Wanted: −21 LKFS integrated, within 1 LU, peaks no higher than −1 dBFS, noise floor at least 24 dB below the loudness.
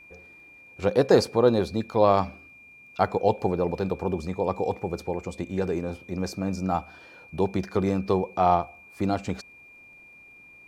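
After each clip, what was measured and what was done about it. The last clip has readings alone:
crackle rate 17 per second; interfering tone 2,400 Hz; level of the tone −48 dBFS; integrated loudness −26.0 LKFS; sample peak −5.0 dBFS; target loudness −21.0 LKFS
→ click removal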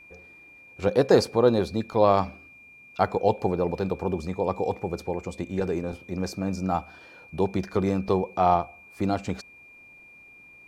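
crackle rate 0 per second; interfering tone 2,400 Hz; level of the tone −48 dBFS
→ notch filter 2,400 Hz, Q 30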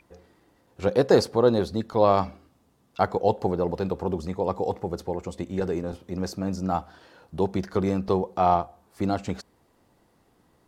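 interfering tone none found; integrated loudness −26.0 LKFS; sample peak −5.0 dBFS; target loudness −21.0 LKFS
→ level +5 dB
brickwall limiter −1 dBFS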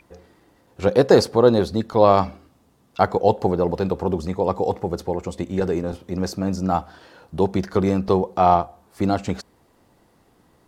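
integrated loudness −21.0 LKFS; sample peak −1.0 dBFS; background noise floor −59 dBFS

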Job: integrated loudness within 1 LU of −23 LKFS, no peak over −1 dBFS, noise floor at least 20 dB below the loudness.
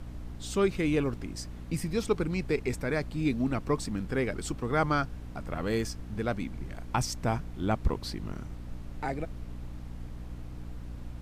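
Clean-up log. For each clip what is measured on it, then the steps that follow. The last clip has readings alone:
mains hum 60 Hz; hum harmonics up to 300 Hz; level of the hum −40 dBFS; background noise floor −42 dBFS; target noise floor −52 dBFS; integrated loudness −32.0 LKFS; sample peak −14.0 dBFS; target loudness −23.0 LKFS
→ hum removal 60 Hz, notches 5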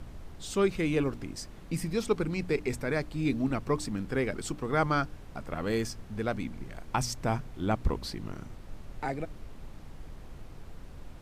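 mains hum none found; background noise floor −47 dBFS; target noise floor −52 dBFS
→ noise reduction from a noise print 6 dB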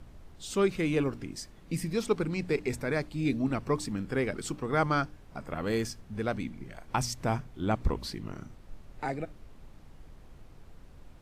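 background noise floor −53 dBFS; integrated loudness −32.0 LKFS; sample peak −13.5 dBFS; target loudness −23.0 LKFS
→ level +9 dB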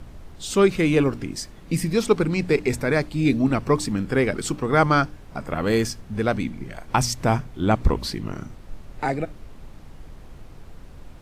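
integrated loudness −23.0 LKFS; sample peak −4.5 dBFS; background noise floor −44 dBFS

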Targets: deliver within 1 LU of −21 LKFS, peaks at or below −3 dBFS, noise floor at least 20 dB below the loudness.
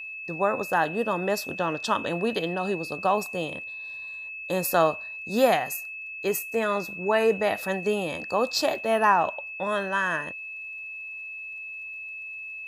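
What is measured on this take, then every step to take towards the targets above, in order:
crackle rate 20 per second; interfering tone 2,600 Hz; level of the tone −35 dBFS; integrated loudness −27.0 LKFS; sample peak −7.5 dBFS; target loudness −21.0 LKFS
→ click removal
notch filter 2,600 Hz, Q 30
level +6 dB
brickwall limiter −3 dBFS

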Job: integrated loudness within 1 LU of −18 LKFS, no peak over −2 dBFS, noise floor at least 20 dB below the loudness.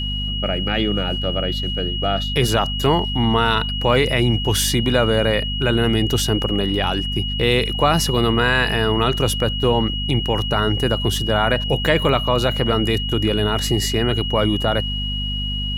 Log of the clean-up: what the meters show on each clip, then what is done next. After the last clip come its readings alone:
mains hum 50 Hz; hum harmonics up to 250 Hz; level of the hum −23 dBFS; interfering tone 2,900 Hz; level of the tone −25 dBFS; integrated loudness −19.0 LKFS; sample peak −2.0 dBFS; target loudness −18.0 LKFS
→ hum removal 50 Hz, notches 5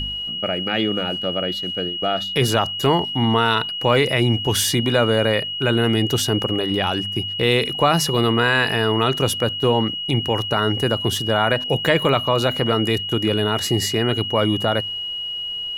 mains hum none found; interfering tone 2,900 Hz; level of the tone −25 dBFS
→ notch filter 2,900 Hz, Q 30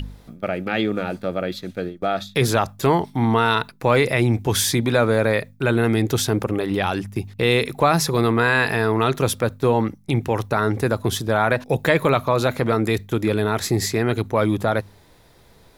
interfering tone none found; integrated loudness −21.0 LKFS; sample peak −3.0 dBFS; target loudness −18.0 LKFS
→ level +3 dB
brickwall limiter −2 dBFS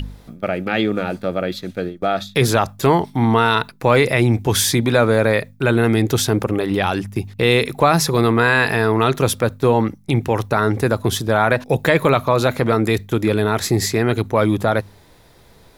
integrated loudness −18.0 LKFS; sample peak −2.0 dBFS; background noise floor −49 dBFS

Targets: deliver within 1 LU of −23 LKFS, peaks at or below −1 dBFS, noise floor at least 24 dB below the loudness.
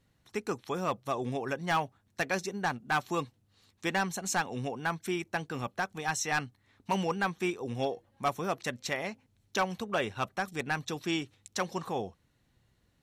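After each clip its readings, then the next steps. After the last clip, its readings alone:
share of clipped samples 0.5%; peaks flattened at −21.5 dBFS; integrated loudness −33.5 LKFS; sample peak −21.5 dBFS; target loudness −23.0 LKFS
→ clipped peaks rebuilt −21.5 dBFS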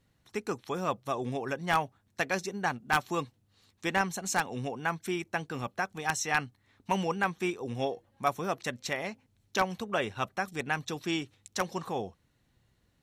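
share of clipped samples 0.0%; integrated loudness −32.5 LKFS; sample peak −12.5 dBFS; target loudness −23.0 LKFS
→ level +9.5 dB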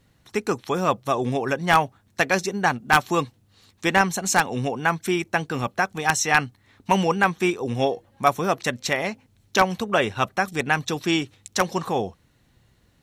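integrated loudness −23.0 LKFS; sample peak −3.0 dBFS; background noise floor −62 dBFS

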